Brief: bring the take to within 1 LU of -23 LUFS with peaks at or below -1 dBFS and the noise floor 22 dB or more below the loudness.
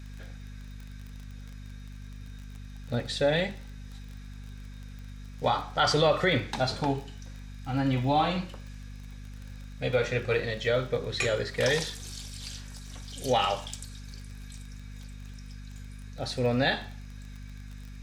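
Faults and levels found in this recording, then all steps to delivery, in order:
tick rate 27 per s; hum 50 Hz; highest harmonic 250 Hz; hum level -40 dBFS; loudness -28.5 LUFS; peak level -12.0 dBFS; loudness target -23.0 LUFS
-> de-click; hum notches 50/100/150/200/250 Hz; trim +5.5 dB

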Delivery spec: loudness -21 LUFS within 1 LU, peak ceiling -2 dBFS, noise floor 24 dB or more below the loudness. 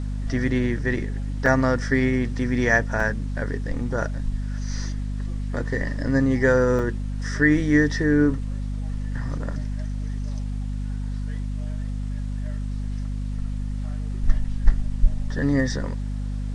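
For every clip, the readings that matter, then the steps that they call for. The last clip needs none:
dropouts 3; longest dropout 3.1 ms; hum 50 Hz; highest harmonic 250 Hz; hum level -25 dBFS; loudness -25.0 LUFS; peak level -2.5 dBFS; loudness target -21.0 LUFS
-> interpolate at 1.46/3.00/6.79 s, 3.1 ms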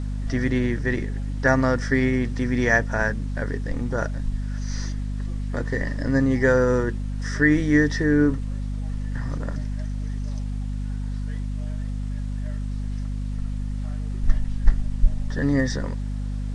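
dropouts 0; hum 50 Hz; highest harmonic 250 Hz; hum level -25 dBFS
-> de-hum 50 Hz, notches 5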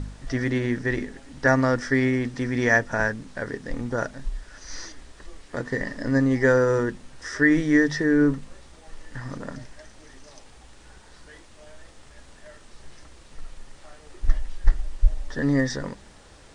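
hum not found; loudness -24.0 LUFS; peak level -3.5 dBFS; loudness target -21.0 LUFS
-> trim +3 dB; peak limiter -2 dBFS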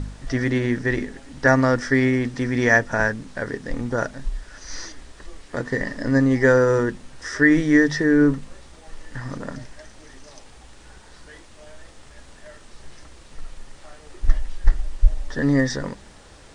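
loudness -21.0 LUFS; peak level -2.0 dBFS; noise floor -47 dBFS

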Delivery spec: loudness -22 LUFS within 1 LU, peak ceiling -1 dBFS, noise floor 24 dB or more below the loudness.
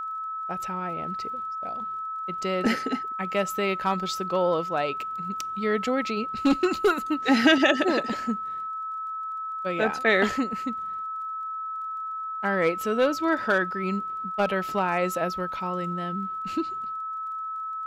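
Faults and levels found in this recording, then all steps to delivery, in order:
tick rate 31 per s; steady tone 1.3 kHz; tone level -30 dBFS; loudness -26.5 LUFS; peak level -7.0 dBFS; loudness target -22.0 LUFS
-> de-click; band-stop 1.3 kHz, Q 30; trim +4.5 dB

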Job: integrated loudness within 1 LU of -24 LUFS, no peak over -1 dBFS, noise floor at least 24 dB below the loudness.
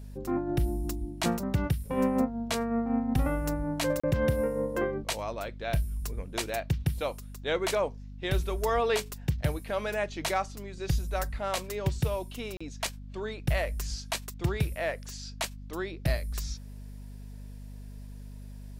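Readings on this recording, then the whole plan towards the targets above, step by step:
dropouts 2; longest dropout 35 ms; hum 50 Hz; highest harmonic 250 Hz; hum level -41 dBFS; loudness -31.5 LUFS; peak level -15.0 dBFS; loudness target -24.0 LUFS
-> interpolate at 4.00/12.57 s, 35 ms; de-hum 50 Hz, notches 5; trim +7.5 dB

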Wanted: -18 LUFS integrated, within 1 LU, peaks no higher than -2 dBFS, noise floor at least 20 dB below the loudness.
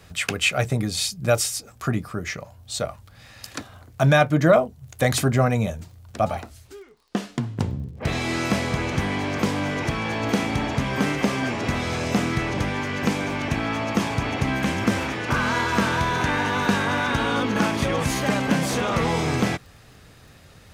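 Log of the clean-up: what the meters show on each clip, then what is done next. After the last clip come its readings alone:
tick rate 30 per s; loudness -23.5 LUFS; peak level -5.0 dBFS; loudness target -18.0 LUFS
-> de-click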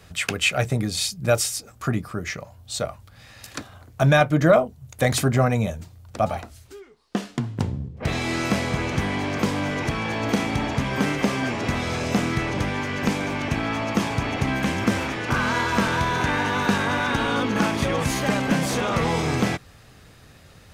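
tick rate 0.24 per s; loudness -23.5 LUFS; peak level -5.0 dBFS; loudness target -18.0 LUFS
-> trim +5.5 dB; peak limiter -2 dBFS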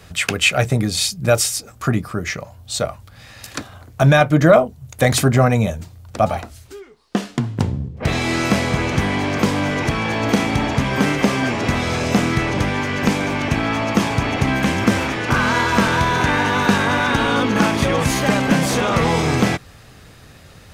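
loudness -18.5 LUFS; peak level -2.0 dBFS; noise floor -44 dBFS

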